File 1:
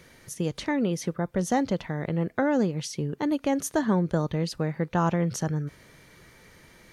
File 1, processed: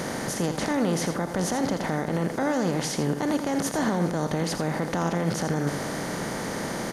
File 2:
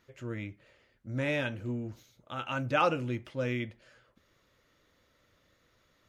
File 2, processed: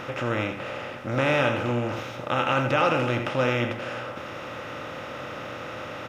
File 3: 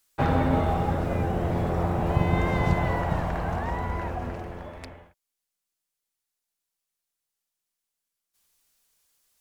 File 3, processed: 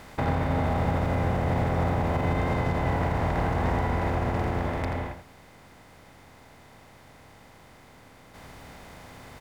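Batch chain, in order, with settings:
per-bin compression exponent 0.4; limiter -15 dBFS; on a send: echo 83 ms -9 dB; on the sum: match loudness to -27 LUFS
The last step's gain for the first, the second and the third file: -0.5, +3.5, -3.0 dB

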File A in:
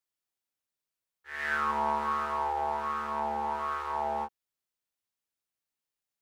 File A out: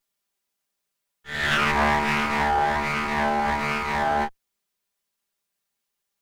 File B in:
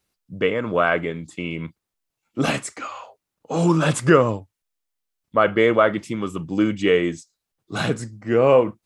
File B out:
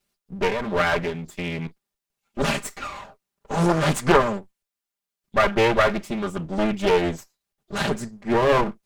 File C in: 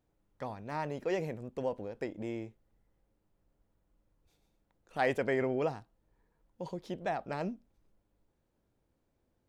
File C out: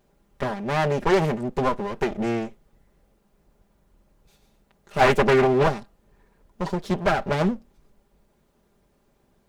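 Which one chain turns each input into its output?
minimum comb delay 5 ms; Doppler distortion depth 0.38 ms; match loudness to -23 LUFS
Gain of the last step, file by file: +10.5, +1.0, +14.5 dB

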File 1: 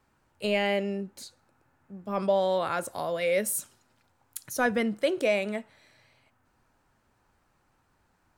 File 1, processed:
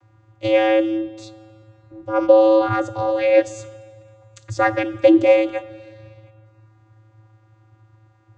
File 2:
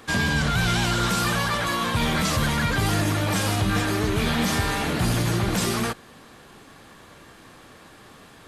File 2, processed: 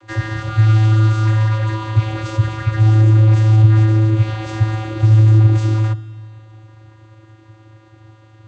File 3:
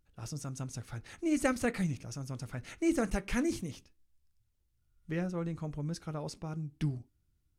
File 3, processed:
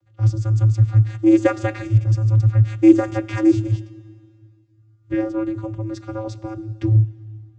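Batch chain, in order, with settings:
vocoder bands 16, square 109 Hz; Schroeder reverb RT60 2.1 s, combs from 25 ms, DRR 17.5 dB; normalise peaks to -1.5 dBFS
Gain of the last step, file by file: +12.5, +10.0, +18.0 dB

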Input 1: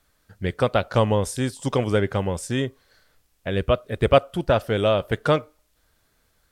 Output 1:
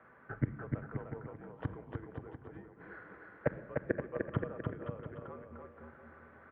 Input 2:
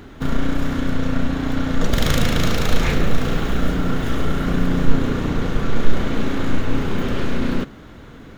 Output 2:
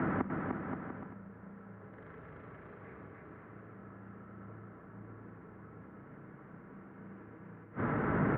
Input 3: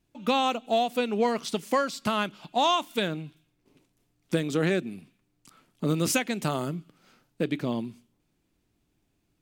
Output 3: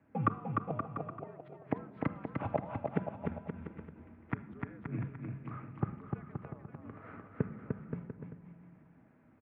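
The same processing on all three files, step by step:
notches 50/100/150/200/250/300/350 Hz; in parallel at -1.5 dB: compressor 5:1, threshold -29 dBFS; on the sum: flipped gate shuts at -20 dBFS, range -36 dB; on a send: bouncing-ball echo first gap 0.3 s, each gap 0.75×, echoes 5; on the sum: shoebox room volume 3100 m³, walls furnished, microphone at 0.87 m; mistuned SSB -69 Hz 190–2000 Hz; gain +6 dB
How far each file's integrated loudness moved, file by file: -18.5, -20.5, -12.5 LU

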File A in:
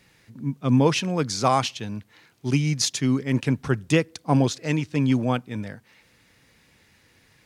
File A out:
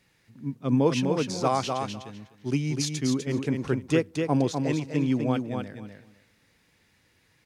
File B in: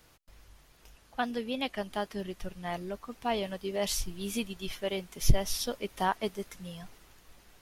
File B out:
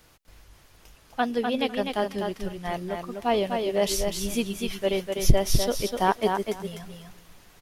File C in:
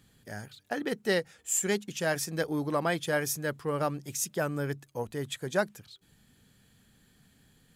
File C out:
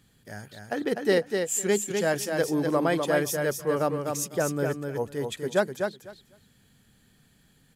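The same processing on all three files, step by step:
dynamic EQ 410 Hz, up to +6 dB, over -37 dBFS, Q 0.81; on a send: feedback echo 0.25 s, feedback 16%, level -5 dB; on the sum: match loudness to -27 LUFS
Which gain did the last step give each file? -7.5, +3.5, 0.0 dB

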